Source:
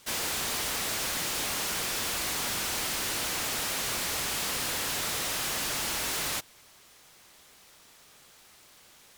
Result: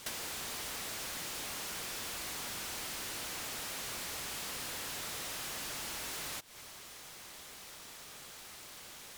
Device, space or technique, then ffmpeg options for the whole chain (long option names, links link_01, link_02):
serial compression, leveller first: -af "acompressor=threshold=-37dB:ratio=2,acompressor=threshold=-44dB:ratio=10,volume=6dB"